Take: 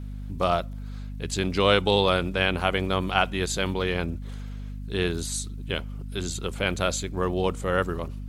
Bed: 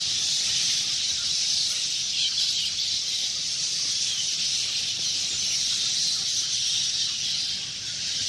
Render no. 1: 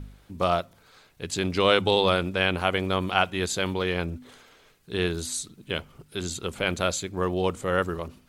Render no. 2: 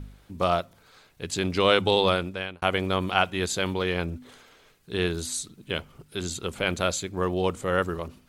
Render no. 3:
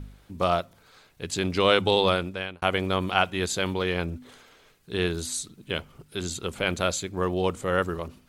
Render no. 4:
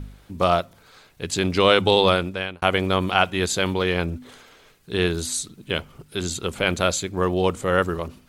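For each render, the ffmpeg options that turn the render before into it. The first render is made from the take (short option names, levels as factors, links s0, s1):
-af "bandreject=f=50:t=h:w=4,bandreject=f=100:t=h:w=4,bandreject=f=150:t=h:w=4,bandreject=f=200:t=h:w=4,bandreject=f=250:t=h:w=4"
-filter_complex "[0:a]asplit=2[s0][s1];[s0]atrim=end=2.62,asetpts=PTS-STARTPTS,afade=t=out:st=2.08:d=0.54[s2];[s1]atrim=start=2.62,asetpts=PTS-STARTPTS,afade=t=in:d=0.004:c=hsin[s3];[s2][s3]concat=n=2:v=0:a=1"
-af anull
-af "volume=1.68,alimiter=limit=0.708:level=0:latency=1"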